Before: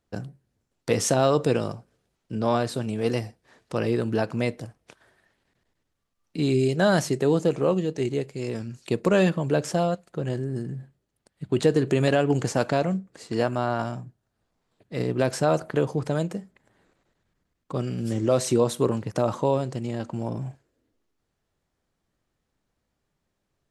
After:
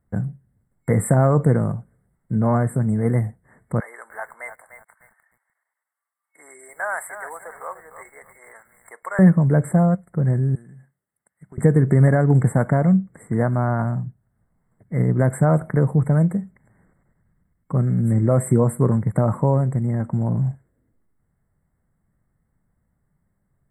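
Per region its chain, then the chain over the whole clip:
3.8–9.19 HPF 820 Hz 24 dB/oct + lo-fi delay 0.299 s, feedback 35%, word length 8-bit, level -9.5 dB
10.55–11.58 HPF 1400 Hz 6 dB/oct + compressor 2:1, threshold -50 dBFS
whole clip: FFT band-reject 2200–7500 Hz; resonant low shelf 240 Hz +8 dB, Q 1.5; gain +2 dB

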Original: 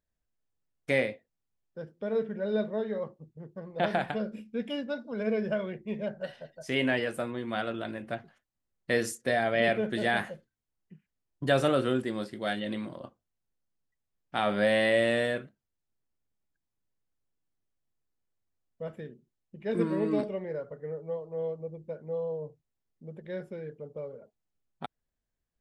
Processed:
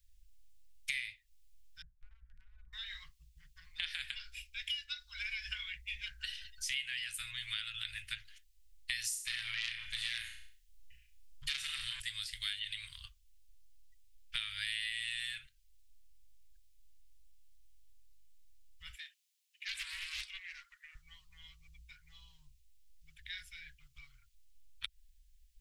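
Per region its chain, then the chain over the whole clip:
1.82–2.73 Bessel low-pass 550 Hz, order 4 + compressor, threshold -33 dBFS
9.08–12 flutter echo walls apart 5.9 m, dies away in 0.39 s + core saturation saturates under 1800 Hz
18.93–20.95 HPF 790 Hz 24 dB/oct + overloaded stage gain 35 dB + Doppler distortion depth 0.25 ms
whole clip: inverse Chebyshev band-stop 200–610 Hz, stop band 80 dB; low shelf 360 Hz +11.5 dB; compressor 5:1, threshold -51 dBFS; gain +14.5 dB

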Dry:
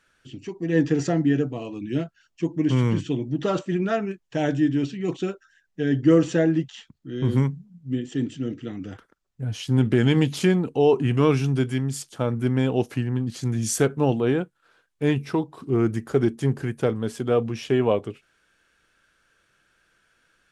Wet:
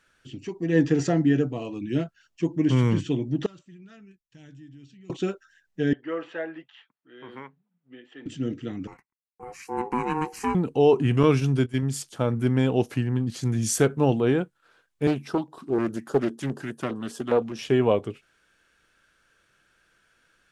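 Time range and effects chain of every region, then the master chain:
3.46–5.1 passive tone stack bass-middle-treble 6-0-2 + compressor 2:1, threshold -47 dBFS
5.93–8.26 HPF 850 Hz + air absorption 490 m
8.87–10.55 gate -51 dBFS, range -26 dB + ring modulator 620 Hz + fixed phaser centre 1500 Hz, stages 4
11.23–11.83 HPF 41 Hz + gate -26 dBFS, range -15 dB + notch 800 Hz
15.07–17.59 HPF 220 Hz + LFO notch square 4.9 Hz 460–2200 Hz + Doppler distortion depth 0.29 ms
whole clip: dry

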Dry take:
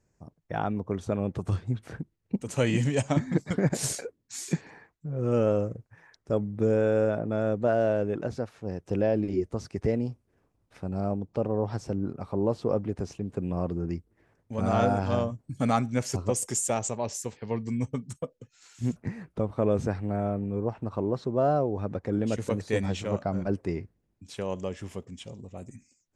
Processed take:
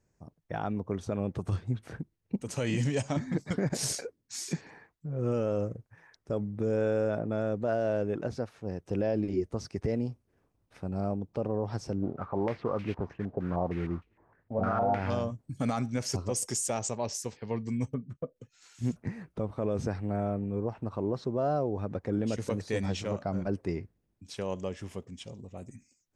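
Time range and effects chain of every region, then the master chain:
12.02–15.1 modulation noise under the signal 15 dB + stepped low-pass 6.5 Hz 690–2500 Hz
17.94–18.36 LPF 1300 Hz + bell 880 Hz -12.5 dB 0.27 oct
whole clip: notch 7300 Hz, Q 20; dynamic EQ 5200 Hz, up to +6 dB, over -56 dBFS, Q 2.5; limiter -17.5 dBFS; gain -2 dB

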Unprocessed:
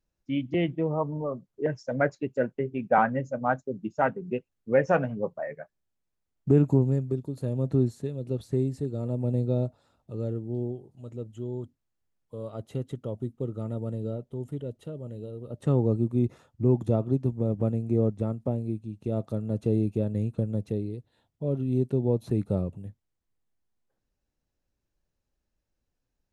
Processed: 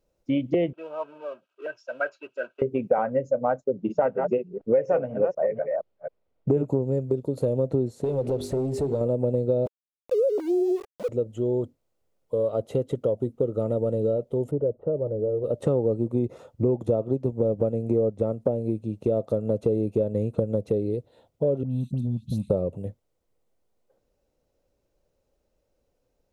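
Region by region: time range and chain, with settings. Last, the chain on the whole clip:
0.73–2.62 G.711 law mismatch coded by mu + double band-pass 2000 Hz, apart 0.79 oct + comb 3.1 ms, depth 46%
3.64–6.67 reverse delay 0.244 s, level -9 dB + low-pass opened by the level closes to 3000 Hz, open at -21 dBFS
8.04–9.01 notches 50/100/150/200/250/300/350/400 Hz + compressor 5:1, threshold -37 dBFS + sample leveller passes 2
9.66–11.09 sine-wave speech + notch 1200 Hz, Q 29 + sample gate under -44 dBFS
14.51–15.44 LPF 1200 Hz 24 dB/oct + notch 240 Hz, Q 6.6
21.63–22.5 elliptic band-stop 220–3100 Hz + compressor 2.5:1, threshold -30 dBFS + dispersion highs, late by 89 ms, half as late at 1800 Hz
whole clip: bell 520 Hz +14.5 dB 0.97 oct; notch 1700 Hz, Q 9.7; compressor 5:1, threshold -26 dBFS; gain +5 dB

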